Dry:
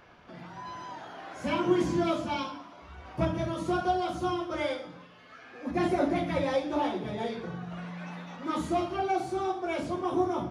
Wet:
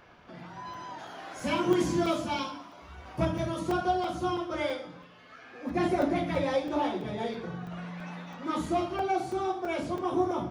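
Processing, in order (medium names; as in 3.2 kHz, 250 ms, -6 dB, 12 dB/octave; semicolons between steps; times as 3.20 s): 0.98–3.59 s: treble shelf 4.8 kHz -> 8.7 kHz +10 dB; crackling interface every 0.33 s, samples 128, zero, from 0.74 s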